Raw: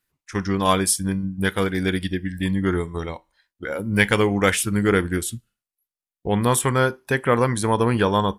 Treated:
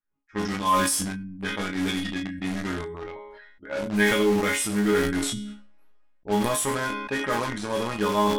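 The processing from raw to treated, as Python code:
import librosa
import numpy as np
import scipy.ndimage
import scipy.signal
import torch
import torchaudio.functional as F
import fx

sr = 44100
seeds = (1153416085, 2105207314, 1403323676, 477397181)

p1 = fx.resonator_bank(x, sr, root=56, chord='sus4', decay_s=0.33)
p2 = fx.quant_companded(p1, sr, bits=2)
p3 = p1 + (p2 * 10.0 ** (-12.0 / 20.0))
p4 = fx.env_lowpass(p3, sr, base_hz=1500.0, full_db=-30.0)
p5 = p4 + fx.room_early_taps(p4, sr, ms=(22, 34), db=(-10.5, -15.5), dry=0)
p6 = fx.sustainer(p5, sr, db_per_s=36.0)
y = p6 * 10.0 ** (8.0 / 20.0)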